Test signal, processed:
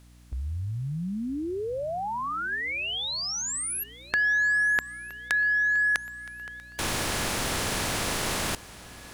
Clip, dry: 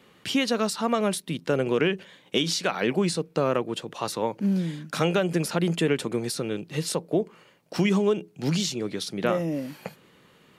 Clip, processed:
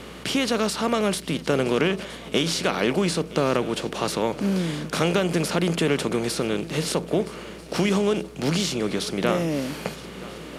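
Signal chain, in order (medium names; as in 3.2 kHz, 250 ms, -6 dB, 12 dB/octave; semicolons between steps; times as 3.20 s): spectral levelling over time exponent 0.6; shuffle delay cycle 1291 ms, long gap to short 3:1, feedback 42%, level -19 dB; hum 60 Hz, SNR 24 dB; trim -1.5 dB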